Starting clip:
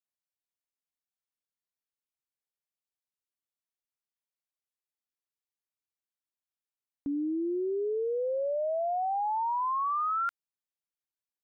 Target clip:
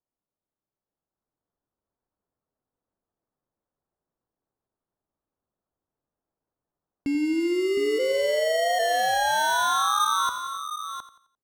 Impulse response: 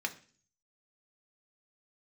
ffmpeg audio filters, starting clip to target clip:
-filter_complex "[0:a]dynaudnorm=f=180:g=13:m=2.11,acrusher=samples=18:mix=1:aa=0.000001,adynamicsmooth=sensitivity=4.5:basefreq=1400,asplit=2[s0][s1];[s1]aecho=0:1:276|712:0.119|0.316[s2];[s0][s2]amix=inputs=2:normalize=0,asplit=3[s3][s4][s5];[s3]afade=t=out:st=7.98:d=0.02[s6];[s4]afreqshift=67,afade=t=in:st=7.98:d=0.02,afade=t=out:st=8.78:d=0.02[s7];[s5]afade=t=in:st=8.78:d=0.02[s8];[s6][s7][s8]amix=inputs=3:normalize=0,asplit=2[s9][s10];[s10]aecho=0:1:87|174|261|348:0.2|0.0758|0.0288|0.0109[s11];[s9][s11]amix=inputs=2:normalize=0"

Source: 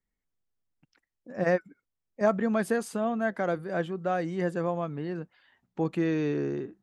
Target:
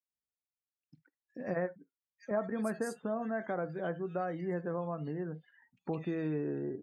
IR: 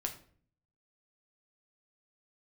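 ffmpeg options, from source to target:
-filter_complex "[0:a]asplit=2[s0][s1];[1:a]atrim=start_sample=2205,atrim=end_sample=3528[s2];[s1][s2]afir=irnorm=-1:irlink=0,volume=0.841[s3];[s0][s3]amix=inputs=2:normalize=0,acompressor=threshold=0.00794:ratio=2,highpass=47,acrossover=split=2400[s4][s5];[s4]adelay=100[s6];[s6][s5]amix=inputs=2:normalize=0,afftdn=nr=23:nf=-55"

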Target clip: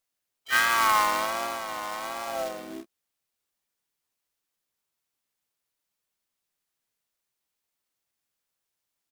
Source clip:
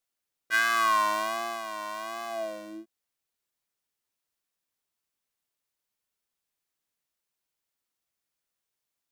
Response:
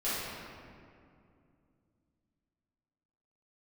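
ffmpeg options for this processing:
-filter_complex "[0:a]asplit=4[s0][s1][s2][s3];[s1]asetrate=35002,aresample=44100,atempo=1.25992,volume=0.447[s4];[s2]asetrate=52444,aresample=44100,atempo=0.840896,volume=0.447[s5];[s3]asetrate=88200,aresample=44100,atempo=0.5,volume=0.2[s6];[s0][s4][s5][s6]amix=inputs=4:normalize=0,acrusher=bits=2:mode=log:mix=0:aa=0.000001"

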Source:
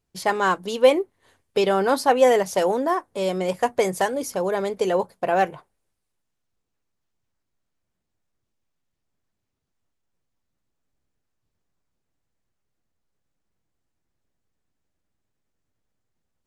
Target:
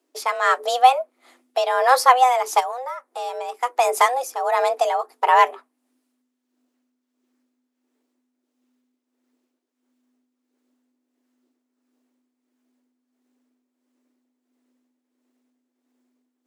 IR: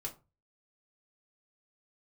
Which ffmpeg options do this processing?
-filter_complex "[0:a]tremolo=f=1.5:d=0.61,asplit=3[s0][s1][s2];[s0]afade=t=out:st=2.59:d=0.02[s3];[s1]acompressor=threshold=0.0158:ratio=3,afade=t=in:st=2.59:d=0.02,afade=t=out:st=3.6:d=0.02[s4];[s2]afade=t=in:st=3.6:d=0.02[s5];[s3][s4][s5]amix=inputs=3:normalize=0,afreqshift=250,volume=2"

